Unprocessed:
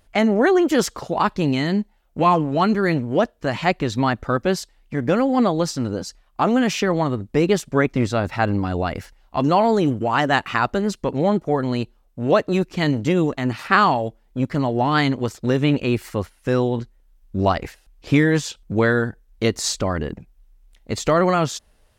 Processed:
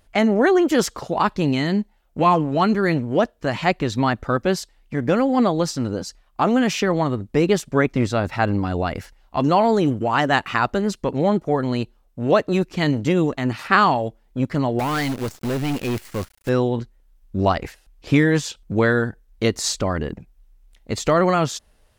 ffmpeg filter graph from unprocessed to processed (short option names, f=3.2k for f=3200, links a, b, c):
-filter_complex "[0:a]asettb=1/sr,asplit=3[a][b][c];[a]atrim=end=14.794[d];[b]atrim=start=14.79:end=16.49,asetpts=PTS-STARTPTS,afade=t=in:d=0.004:c=qsin,afade=t=out:st=1.696:d=0.004:c=qsin,acrusher=bits=6:dc=4:mix=0:aa=0.000001,asoftclip=type=hard:threshold=-20dB[e];[c]atrim=start=16.486[f];[d][e]acrossfade=d=0.004:c1=hsin:c2=qsin[g];[g][f]acrossfade=d=0.004:c1=qsin:c2=hsin"